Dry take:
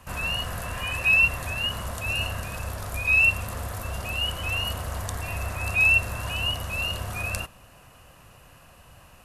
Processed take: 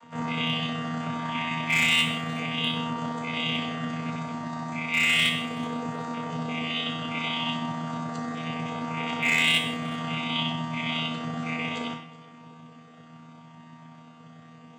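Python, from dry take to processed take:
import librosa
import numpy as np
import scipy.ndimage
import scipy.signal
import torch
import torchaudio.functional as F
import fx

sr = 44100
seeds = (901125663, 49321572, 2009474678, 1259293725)

p1 = fx.chord_vocoder(x, sr, chord='bare fifth', root=51)
p2 = fx.stretch_grains(p1, sr, factor=1.6, grain_ms=63.0)
p3 = np.clip(p2, -10.0 ** (-17.0 / 20.0), 10.0 ** (-17.0 / 20.0))
p4 = p3 + fx.echo_feedback(p3, sr, ms=376, feedback_pct=32, wet_db=-22.0, dry=0)
p5 = fx.rev_gated(p4, sr, seeds[0], gate_ms=210, shape='falling', drr_db=3.0)
y = F.gain(torch.from_numpy(p5), -1.5).numpy()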